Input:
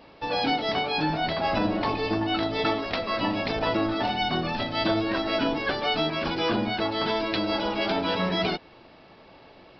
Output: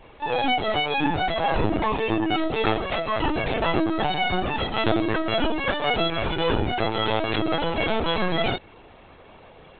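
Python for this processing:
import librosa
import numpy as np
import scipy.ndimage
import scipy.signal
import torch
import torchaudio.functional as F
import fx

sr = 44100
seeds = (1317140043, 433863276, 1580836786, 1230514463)

y = fx.vibrato(x, sr, rate_hz=2.5, depth_cents=14.0)
y = fx.lpc_vocoder(y, sr, seeds[0], excitation='pitch_kept', order=16)
y = y * librosa.db_to_amplitude(3.0)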